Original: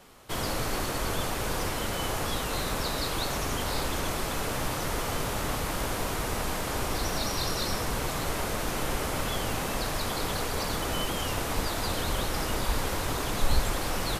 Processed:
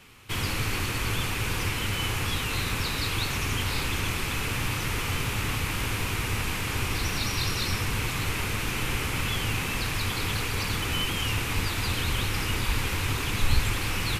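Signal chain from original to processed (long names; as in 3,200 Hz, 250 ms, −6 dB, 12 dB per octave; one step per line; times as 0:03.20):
graphic EQ with 15 bands 100 Hz +10 dB, 630 Hz −11 dB, 2,500 Hz +10 dB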